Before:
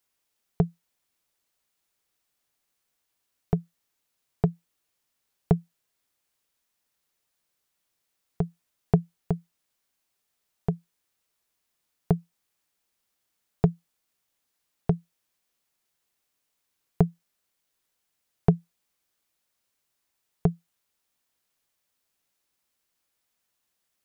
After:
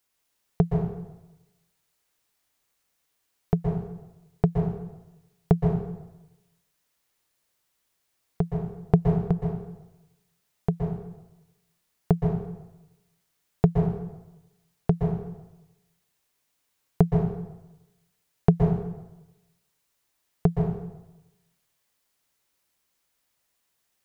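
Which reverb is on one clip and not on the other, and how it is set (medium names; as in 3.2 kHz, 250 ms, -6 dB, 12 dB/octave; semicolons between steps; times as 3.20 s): plate-style reverb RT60 1 s, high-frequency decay 0.75×, pre-delay 110 ms, DRR 1 dB; trim +1.5 dB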